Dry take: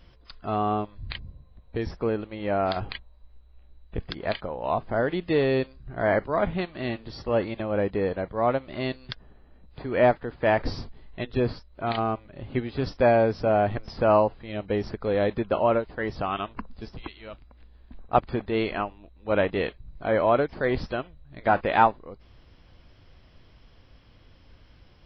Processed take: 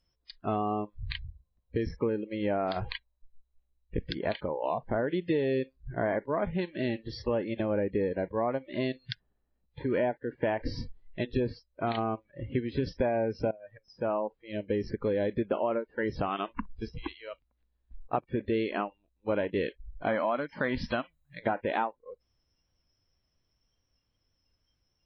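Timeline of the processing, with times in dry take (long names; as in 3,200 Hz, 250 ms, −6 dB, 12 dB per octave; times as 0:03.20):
0:13.51–0:15.25: fade in, from −23.5 dB
0:20.07–0:21.39: drawn EQ curve 130 Hz 0 dB, 250 Hz +4 dB, 400 Hz −7 dB, 620 Hz +3 dB, 1,100 Hz +6 dB
whole clip: downward compressor 6 to 1, threshold −28 dBFS; noise reduction from a noise print of the clip's start 24 dB; dynamic equaliser 300 Hz, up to +4 dB, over −43 dBFS, Q 0.71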